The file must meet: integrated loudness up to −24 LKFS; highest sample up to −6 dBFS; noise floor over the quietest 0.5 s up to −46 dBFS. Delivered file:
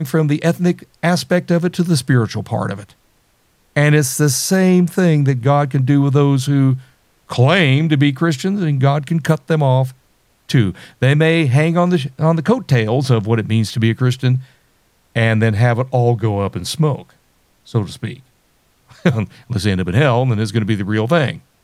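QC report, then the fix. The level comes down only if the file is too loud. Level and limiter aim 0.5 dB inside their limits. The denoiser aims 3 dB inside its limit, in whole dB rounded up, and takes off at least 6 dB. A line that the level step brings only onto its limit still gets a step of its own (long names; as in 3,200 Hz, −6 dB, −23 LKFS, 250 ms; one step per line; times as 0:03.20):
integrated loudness −16.0 LKFS: out of spec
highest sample −2.0 dBFS: out of spec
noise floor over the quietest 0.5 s −58 dBFS: in spec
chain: level −8.5 dB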